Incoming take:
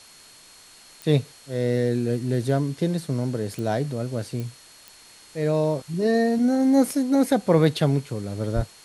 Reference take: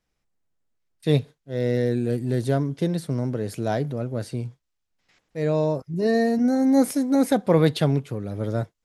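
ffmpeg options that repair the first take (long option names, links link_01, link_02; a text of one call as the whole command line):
ffmpeg -i in.wav -filter_complex "[0:a]adeclick=threshold=4,bandreject=frequency=4300:width=30,asplit=3[link_01][link_02][link_03];[link_01]afade=type=out:start_time=8.55:duration=0.02[link_04];[link_02]highpass=frequency=140:width=0.5412,highpass=frequency=140:width=1.3066,afade=type=in:start_time=8.55:duration=0.02,afade=type=out:start_time=8.67:duration=0.02[link_05];[link_03]afade=type=in:start_time=8.67:duration=0.02[link_06];[link_04][link_05][link_06]amix=inputs=3:normalize=0,afwtdn=0.004" out.wav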